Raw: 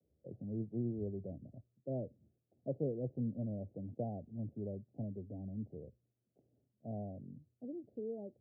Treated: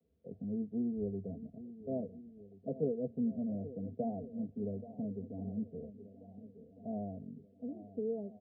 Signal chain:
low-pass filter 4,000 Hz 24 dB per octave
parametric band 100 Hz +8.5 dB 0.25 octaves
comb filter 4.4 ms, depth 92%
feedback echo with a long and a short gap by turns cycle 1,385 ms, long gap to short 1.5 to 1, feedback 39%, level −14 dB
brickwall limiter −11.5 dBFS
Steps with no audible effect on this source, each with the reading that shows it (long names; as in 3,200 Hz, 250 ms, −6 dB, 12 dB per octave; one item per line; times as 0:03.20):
low-pass filter 4,000 Hz: nothing at its input above 810 Hz
brickwall limiter −11.5 dBFS: peak of its input −22.0 dBFS